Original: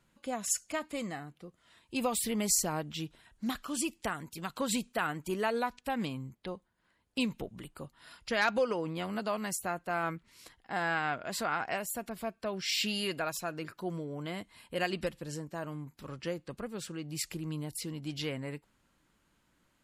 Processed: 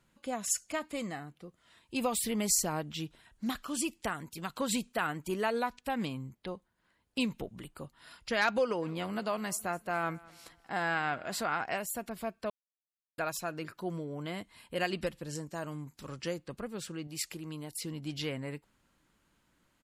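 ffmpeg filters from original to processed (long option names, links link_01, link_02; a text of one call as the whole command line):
ffmpeg -i in.wav -filter_complex "[0:a]asplit=3[link_01][link_02][link_03];[link_01]afade=type=out:start_time=8.81:duration=0.02[link_04];[link_02]aecho=1:1:207|414|621:0.075|0.0307|0.0126,afade=type=in:start_time=8.81:duration=0.02,afade=type=out:start_time=11.51:duration=0.02[link_05];[link_03]afade=type=in:start_time=11.51:duration=0.02[link_06];[link_04][link_05][link_06]amix=inputs=3:normalize=0,asettb=1/sr,asplit=3[link_07][link_08][link_09];[link_07]atrim=end=15.354[link_10];[link_08]atrim=start=15.35:end=16.39,asetpts=PTS-STARTPTS,afade=type=in:duration=0.004:curve=qsin,afade=type=out:start_time=1.036:duration=0.004:curve=qsin,equalizer=frequency=7000:width_type=o:width=1.4:gain=7.5[link_11];[link_09]atrim=start=16.386[link_12];[link_10][link_11]acrossfade=duration=0.004:curve1=hsin:curve2=qsin[link_13];[link_13][link_12]acrossfade=duration=0.004:curve1=qsin:curve2=hsin,asettb=1/sr,asplit=3[link_14][link_15][link_16];[link_14]atrim=end=17.074[link_17];[link_15]atrim=start=17.07:end=17.85,asetpts=PTS-STARTPTS,afade=type=in:duration=0.004:curve=qsin,afade=type=out:start_time=0.776:duration=0.004:curve=qsin,lowshelf=frequency=190:gain=-10.5[link_18];[link_16]atrim=start=17.846[link_19];[link_17][link_18]acrossfade=duration=0.004:curve1=hsin:curve2=qsin[link_20];[link_20][link_19]acrossfade=duration=0.004:curve1=qsin:curve2=hsin,asplit=3[link_21][link_22][link_23];[link_21]atrim=end=12.5,asetpts=PTS-STARTPTS,afade=type=out:start_time=12.496:duration=0.004:curve=hsin[link_24];[link_22]atrim=start=12.5:end=13.18,asetpts=PTS-STARTPTS,volume=0[link_25];[link_23]atrim=start=13.18,asetpts=PTS-STARTPTS,afade=type=in:duration=0.004:curve=hsin[link_26];[link_24][link_25][link_26]concat=n=3:v=0:a=1" out.wav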